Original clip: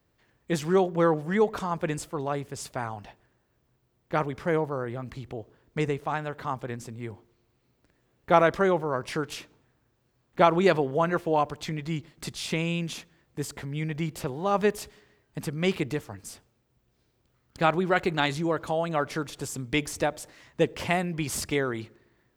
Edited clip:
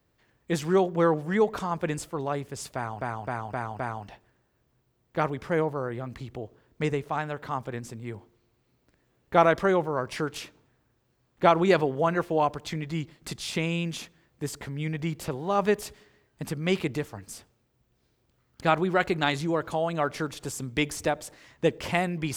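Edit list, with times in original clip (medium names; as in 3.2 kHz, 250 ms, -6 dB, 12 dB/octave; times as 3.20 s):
2.75–3.01 s: loop, 5 plays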